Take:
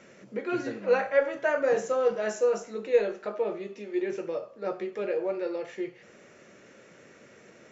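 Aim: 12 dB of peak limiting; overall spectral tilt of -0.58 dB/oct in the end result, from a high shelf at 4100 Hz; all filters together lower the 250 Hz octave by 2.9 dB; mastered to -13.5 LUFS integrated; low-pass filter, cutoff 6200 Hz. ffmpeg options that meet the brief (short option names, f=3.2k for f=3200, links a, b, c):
-af "lowpass=6.2k,equalizer=f=250:t=o:g=-5,highshelf=f=4.1k:g=-8,volume=20.5dB,alimiter=limit=-3dB:level=0:latency=1"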